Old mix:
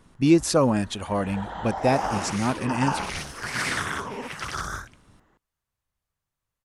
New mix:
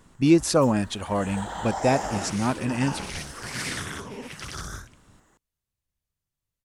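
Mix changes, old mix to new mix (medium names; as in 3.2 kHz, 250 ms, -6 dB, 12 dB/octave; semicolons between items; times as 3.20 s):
first sound: remove distance through air 210 m; second sound: add peaking EQ 1.1 kHz -9.5 dB 2 oct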